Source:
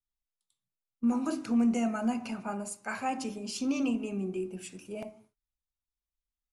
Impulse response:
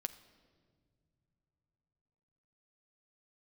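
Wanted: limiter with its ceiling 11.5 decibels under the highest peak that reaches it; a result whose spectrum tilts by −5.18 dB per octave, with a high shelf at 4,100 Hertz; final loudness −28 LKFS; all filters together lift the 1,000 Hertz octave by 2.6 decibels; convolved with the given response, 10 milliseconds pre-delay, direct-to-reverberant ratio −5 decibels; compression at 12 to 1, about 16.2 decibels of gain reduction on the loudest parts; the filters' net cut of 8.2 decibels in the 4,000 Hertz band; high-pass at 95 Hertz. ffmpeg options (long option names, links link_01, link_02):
-filter_complex "[0:a]highpass=95,equalizer=frequency=1000:width_type=o:gain=4.5,equalizer=frequency=4000:width_type=o:gain=-8,highshelf=frequency=4100:gain=-6.5,acompressor=threshold=-39dB:ratio=12,alimiter=level_in=15dB:limit=-24dB:level=0:latency=1,volume=-15dB,asplit=2[link_01][link_02];[1:a]atrim=start_sample=2205,adelay=10[link_03];[link_02][link_03]afir=irnorm=-1:irlink=0,volume=6.5dB[link_04];[link_01][link_04]amix=inputs=2:normalize=0,volume=13dB"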